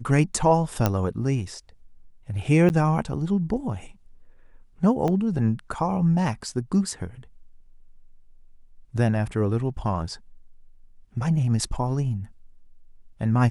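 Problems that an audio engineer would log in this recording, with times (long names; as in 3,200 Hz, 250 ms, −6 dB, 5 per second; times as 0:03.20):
0:00.86: click −7 dBFS
0:02.69–0:02.70: drop-out 9.6 ms
0:05.08: drop-out 2.6 ms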